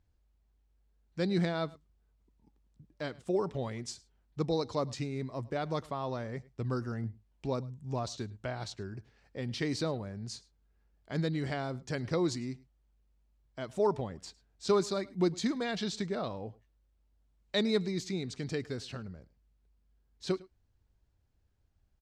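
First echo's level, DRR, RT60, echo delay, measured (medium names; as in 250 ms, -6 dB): -22.5 dB, no reverb, no reverb, 105 ms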